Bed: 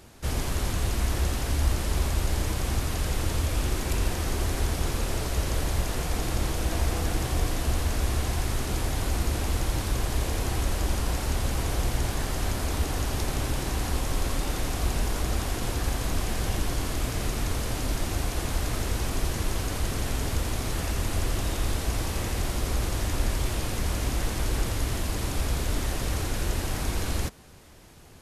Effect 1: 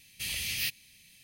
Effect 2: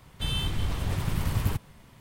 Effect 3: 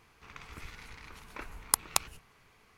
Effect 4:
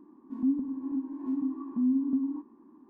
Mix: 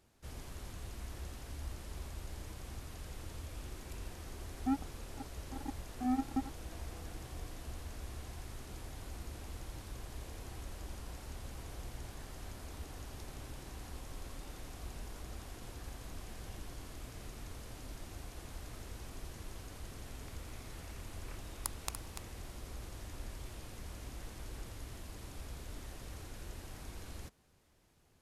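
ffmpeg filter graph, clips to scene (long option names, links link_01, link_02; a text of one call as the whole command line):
ffmpeg -i bed.wav -i cue0.wav -i cue1.wav -i cue2.wav -i cue3.wav -filter_complex "[0:a]volume=-19dB[link_01];[4:a]acrusher=bits=3:mix=0:aa=0.5[link_02];[3:a]aecho=1:1:290:0.398[link_03];[link_02]atrim=end=2.89,asetpts=PTS-STARTPTS,volume=-8dB,afade=type=in:duration=0.004:curve=hsin,afade=type=out:start_time=2.886:duration=0.004:curve=hsin,adelay=4230[link_04];[link_03]atrim=end=2.77,asetpts=PTS-STARTPTS,volume=-13.5dB,afade=type=in:duration=0.004:curve=hsin,afade=type=out:start_time=2.766:duration=0.004:curve=hsin,adelay=19920[link_05];[link_01][link_04][link_05]amix=inputs=3:normalize=0" out.wav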